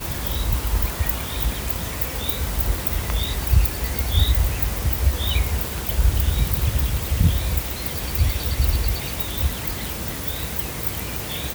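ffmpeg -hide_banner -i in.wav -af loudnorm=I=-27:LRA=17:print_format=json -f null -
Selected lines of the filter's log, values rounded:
"input_i" : "-23.4",
"input_tp" : "-4.1",
"input_lra" : "3.1",
"input_thresh" : "-33.4",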